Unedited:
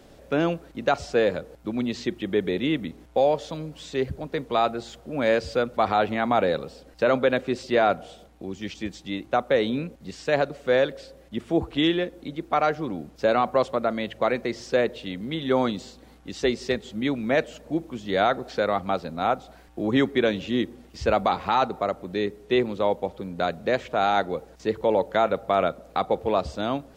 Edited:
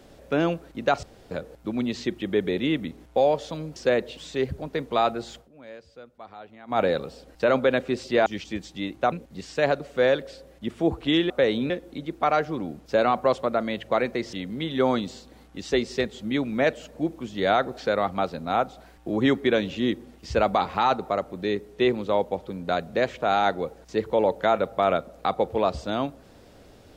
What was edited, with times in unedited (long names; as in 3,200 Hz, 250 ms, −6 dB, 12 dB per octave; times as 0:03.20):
0:01.03–0:01.31: fill with room tone
0:04.95–0:06.39: duck −21.5 dB, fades 0.13 s
0:07.85–0:08.56: remove
0:09.42–0:09.82: move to 0:12.00
0:14.63–0:15.04: move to 0:03.76